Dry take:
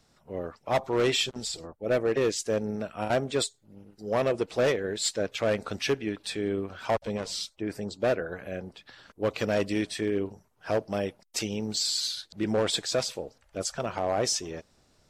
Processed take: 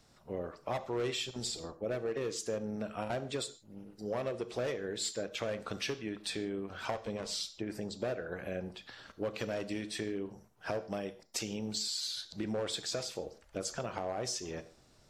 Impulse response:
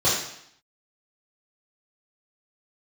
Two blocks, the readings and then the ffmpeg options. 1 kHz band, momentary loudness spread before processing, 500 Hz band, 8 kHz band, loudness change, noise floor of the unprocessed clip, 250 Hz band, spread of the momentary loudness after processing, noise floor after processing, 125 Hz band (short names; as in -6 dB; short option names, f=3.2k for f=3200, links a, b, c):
-8.5 dB, 11 LU, -9.0 dB, -7.0 dB, -8.5 dB, -66 dBFS, -7.5 dB, 7 LU, -64 dBFS, -7.5 dB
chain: -filter_complex "[0:a]acompressor=threshold=-34dB:ratio=6,asplit=2[a][b];[1:a]atrim=start_sample=2205,afade=t=out:st=0.2:d=0.01,atrim=end_sample=9261,adelay=11[c];[b][c]afir=irnorm=-1:irlink=0,volume=-28dB[d];[a][d]amix=inputs=2:normalize=0"